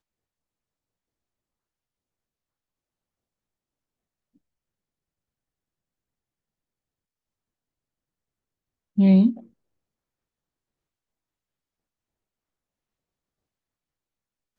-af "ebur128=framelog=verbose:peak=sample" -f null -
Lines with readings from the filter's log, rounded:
Integrated loudness:
  I:         -18.6 LUFS
  Threshold: -30.3 LUFS
Loudness range:
  LRA:         4.5 LU
  Threshold: -46.2 LUFS
  LRA low:   -30.0 LUFS
  LRA high:  -25.6 LUFS
Sample peak:
  Peak:       -8.4 dBFS